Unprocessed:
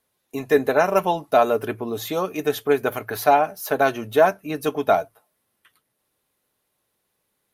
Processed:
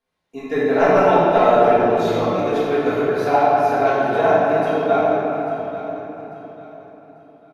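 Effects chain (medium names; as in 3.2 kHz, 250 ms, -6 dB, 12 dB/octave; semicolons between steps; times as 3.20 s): 0.71–2.10 s: waveshaping leveller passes 1; distance through air 83 m; feedback delay 844 ms, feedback 32%, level -14 dB; reverberation RT60 3.5 s, pre-delay 4 ms, DRR -11 dB; trim -8.5 dB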